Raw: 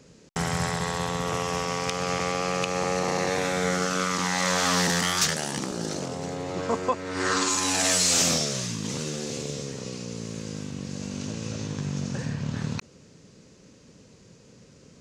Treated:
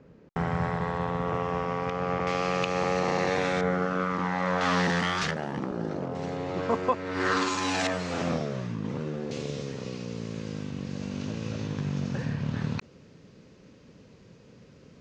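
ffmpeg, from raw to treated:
-af "asetnsamples=n=441:p=0,asendcmd='2.27 lowpass f 3800;3.61 lowpass f 1500;4.61 lowpass f 2700;5.31 lowpass f 1500;6.15 lowpass f 3400;7.87 lowpass f 1500;9.31 lowpass f 3600',lowpass=1600"

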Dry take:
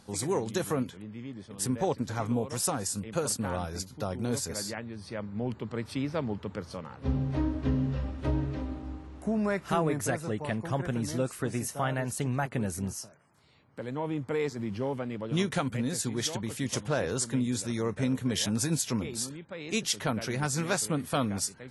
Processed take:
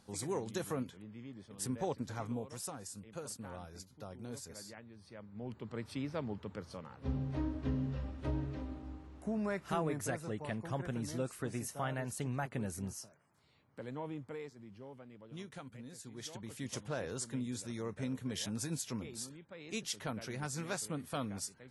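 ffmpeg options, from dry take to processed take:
-af "volume=2.51,afade=t=out:st=2.07:d=0.64:silence=0.473151,afade=t=in:st=5.28:d=0.46:silence=0.446684,afade=t=out:st=13.88:d=0.65:silence=0.266073,afade=t=in:st=16.04:d=0.59:silence=0.354813"

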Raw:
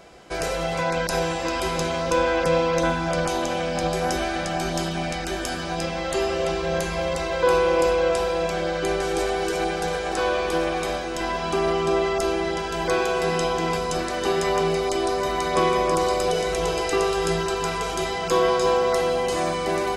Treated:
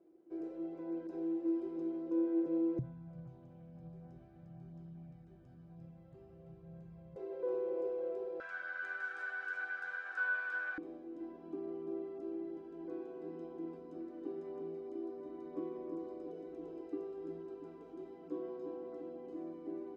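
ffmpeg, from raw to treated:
-af "asetnsamples=n=441:p=0,asendcmd='2.79 bandpass f 130;7.16 bandpass f 410;8.4 bandpass f 1500;10.78 bandpass f 300',bandpass=f=330:t=q:w=18:csg=0"

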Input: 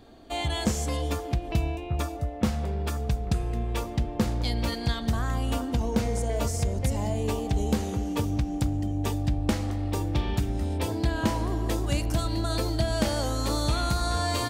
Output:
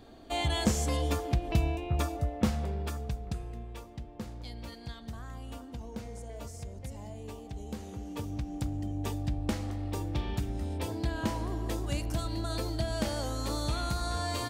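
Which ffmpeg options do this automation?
-af "volume=2.51,afade=t=out:st=2.26:d=0.84:silence=0.446684,afade=t=out:st=3.1:d=0.7:silence=0.446684,afade=t=in:st=7.65:d=1.25:silence=0.354813"

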